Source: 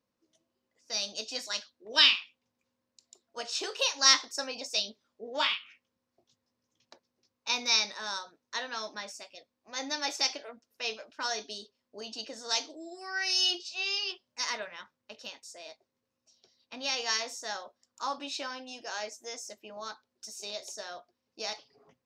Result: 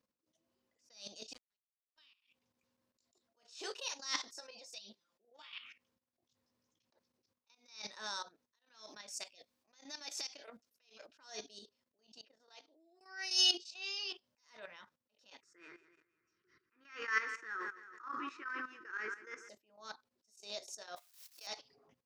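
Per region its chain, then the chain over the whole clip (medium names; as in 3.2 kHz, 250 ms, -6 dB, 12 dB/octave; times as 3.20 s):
1.33–2.07 s: small samples zeroed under -28 dBFS + distance through air 96 m + upward expansion, over -37 dBFS
4.36–5.53 s: bass shelf 190 Hz -7.5 dB + comb 5.8 ms + compression 10:1, threshold -39 dBFS
8.55–11.06 s: treble shelf 2.1 kHz +7.5 dB + compression 10:1, threshold -36 dBFS
12.21–13.01 s: three-band isolator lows -23 dB, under 220 Hz, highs -22 dB, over 4.3 kHz + upward expansion 2.5:1, over -43 dBFS
15.41–19.49 s: FFT filter 100 Hz 0 dB, 160 Hz +5 dB, 250 Hz -7 dB, 360 Hz +13 dB, 660 Hz -25 dB, 1.3 kHz +14 dB, 1.9 kHz +10 dB, 3.8 kHz -20 dB, 5.9 kHz -15 dB, 14 kHz -25 dB + feedback delay 163 ms, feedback 47%, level -13.5 dB + decay stretcher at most 98 dB/s
20.96–21.47 s: zero-crossing glitches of -39 dBFS + high-pass 920 Hz + level held to a coarse grid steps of 10 dB
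whole clip: dynamic bell 9.6 kHz, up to +4 dB, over -47 dBFS, Q 0.78; level held to a coarse grid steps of 14 dB; attacks held to a fixed rise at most 130 dB/s; trim +1 dB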